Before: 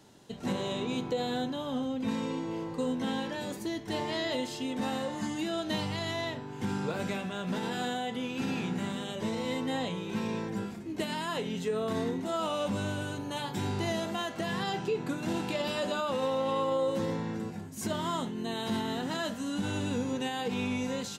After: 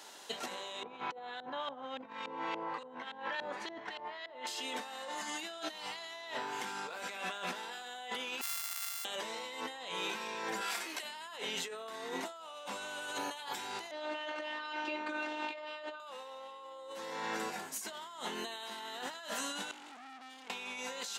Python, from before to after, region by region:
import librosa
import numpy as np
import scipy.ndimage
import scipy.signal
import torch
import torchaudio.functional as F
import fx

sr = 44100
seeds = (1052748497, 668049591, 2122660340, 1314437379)

y = fx.chain(x, sr, fx.peak_eq(hz=360.0, db=-9.0, octaves=2.3),
    fx.over_compress(threshold_db=-42.0, ratio=-0.5),
    fx.filter_lfo_lowpass(shape='saw_up', hz=3.5, low_hz=480.0, high_hz=3600.0, q=0.72), at=(0.83, 4.47))
y = fx.chain(y, sr, fx.sample_sort(block=64),
    fx.ladder_highpass(hz=810.0, resonance_pct=35),
    fx.differentiator(), at=(8.41, 9.05))
y = fx.chain(y, sr, fx.highpass(hz=1500.0, slope=6),
    fx.notch(hz=6800.0, q=17.0),
    fx.env_flatten(amount_pct=50), at=(10.61, 11.03))
y = fx.chain(y, sr, fx.robotise(hz=304.0),
    fx.lowpass(hz=2800.0, slope=12), at=(13.91, 16.0))
y = fx.chain(y, sr, fx.vowel_filter(vowel='i'),
    fx.high_shelf_res(hz=5500.0, db=8.5, q=1.5),
    fx.tube_stage(drive_db=51.0, bias=0.45), at=(19.71, 20.5))
y = scipy.signal.sosfilt(scipy.signal.butter(2, 800.0, 'highpass', fs=sr, output='sos'), y)
y = fx.over_compress(y, sr, threshold_db=-47.0, ratio=-1.0)
y = y * librosa.db_to_amplitude(5.0)